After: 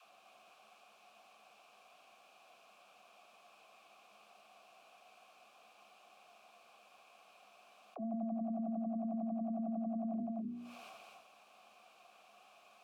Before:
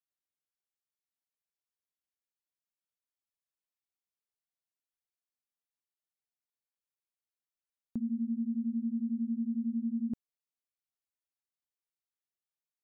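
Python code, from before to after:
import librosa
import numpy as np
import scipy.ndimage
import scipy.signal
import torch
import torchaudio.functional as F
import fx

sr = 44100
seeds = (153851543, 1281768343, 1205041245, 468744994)

p1 = fx.peak_eq(x, sr, hz=210.0, db=14.0, octaves=0.22)
p2 = fx.hum_notches(p1, sr, base_hz=60, count=7)
p3 = fx.transient(p2, sr, attack_db=-10, sustain_db=12)
p4 = fx.vowel_filter(p3, sr, vowel='a')
p5 = fx.dispersion(p4, sr, late='lows', ms=60.0, hz=310.0)
p6 = p5 + fx.echo_single(p5, sr, ms=250, db=-6.0, dry=0)
p7 = fx.env_flatten(p6, sr, amount_pct=70)
y = p7 * librosa.db_to_amplitude(10.0)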